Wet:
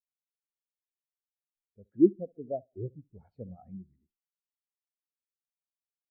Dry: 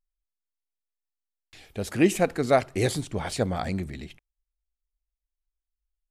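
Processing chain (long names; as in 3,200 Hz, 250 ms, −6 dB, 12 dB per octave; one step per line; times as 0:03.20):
tape delay 68 ms, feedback 47%, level −10.5 dB
treble cut that deepens with the level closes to 540 Hz, closed at −20 dBFS
every bin expanded away from the loudest bin 2.5 to 1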